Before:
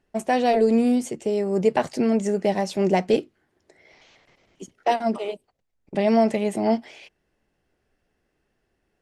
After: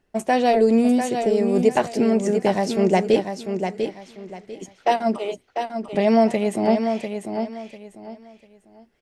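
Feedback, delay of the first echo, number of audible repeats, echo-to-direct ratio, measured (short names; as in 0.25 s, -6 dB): 26%, 0.696 s, 3, -6.5 dB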